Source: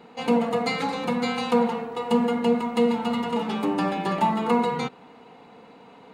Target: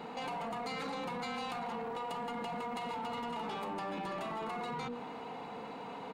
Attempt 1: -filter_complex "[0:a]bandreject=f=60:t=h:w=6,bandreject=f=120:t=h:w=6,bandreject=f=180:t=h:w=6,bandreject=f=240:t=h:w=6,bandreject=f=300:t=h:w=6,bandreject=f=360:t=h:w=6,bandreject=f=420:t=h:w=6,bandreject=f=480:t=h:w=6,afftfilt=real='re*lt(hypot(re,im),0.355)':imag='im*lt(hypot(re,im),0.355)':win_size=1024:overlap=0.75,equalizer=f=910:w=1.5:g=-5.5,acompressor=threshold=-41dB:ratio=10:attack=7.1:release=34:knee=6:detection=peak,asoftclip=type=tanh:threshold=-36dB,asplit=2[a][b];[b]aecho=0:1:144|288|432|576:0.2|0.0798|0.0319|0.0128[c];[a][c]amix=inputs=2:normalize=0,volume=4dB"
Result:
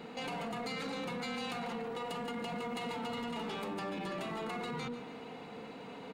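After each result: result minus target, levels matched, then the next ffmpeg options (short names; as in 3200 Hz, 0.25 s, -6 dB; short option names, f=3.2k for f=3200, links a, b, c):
echo-to-direct +10 dB; 1000 Hz band -3.5 dB
-filter_complex "[0:a]bandreject=f=60:t=h:w=6,bandreject=f=120:t=h:w=6,bandreject=f=180:t=h:w=6,bandreject=f=240:t=h:w=6,bandreject=f=300:t=h:w=6,bandreject=f=360:t=h:w=6,bandreject=f=420:t=h:w=6,bandreject=f=480:t=h:w=6,afftfilt=real='re*lt(hypot(re,im),0.355)':imag='im*lt(hypot(re,im),0.355)':win_size=1024:overlap=0.75,equalizer=f=910:w=1.5:g=-5.5,acompressor=threshold=-41dB:ratio=10:attack=7.1:release=34:knee=6:detection=peak,asoftclip=type=tanh:threshold=-36dB,asplit=2[a][b];[b]aecho=0:1:144|288|432:0.0631|0.0252|0.0101[c];[a][c]amix=inputs=2:normalize=0,volume=4dB"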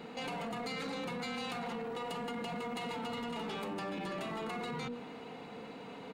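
1000 Hz band -3.5 dB
-filter_complex "[0:a]bandreject=f=60:t=h:w=6,bandreject=f=120:t=h:w=6,bandreject=f=180:t=h:w=6,bandreject=f=240:t=h:w=6,bandreject=f=300:t=h:w=6,bandreject=f=360:t=h:w=6,bandreject=f=420:t=h:w=6,bandreject=f=480:t=h:w=6,afftfilt=real='re*lt(hypot(re,im),0.355)':imag='im*lt(hypot(re,im),0.355)':win_size=1024:overlap=0.75,equalizer=f=910:w=1.5:g=3.5,acompressor=threshold=-41dB:ratio=10:attack=7.1:release=34:knee=6:detection=peak,asoftclip=type=tanh:threshold=-36dB,asplit=2[a][b];[b]aecho=0:1:144|288|432:0.0631|0.0252|0.0101[c];[a][c]amix=inputs=2:normalize=0,volume=4dB"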